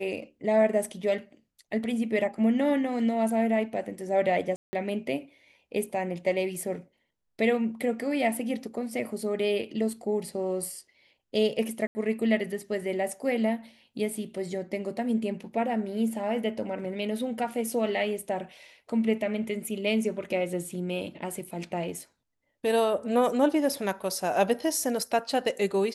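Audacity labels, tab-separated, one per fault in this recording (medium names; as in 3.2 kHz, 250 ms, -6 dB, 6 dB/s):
4.560000	4.730000	dropout 170 ms
11.870000	11.950000	dropout 80 ms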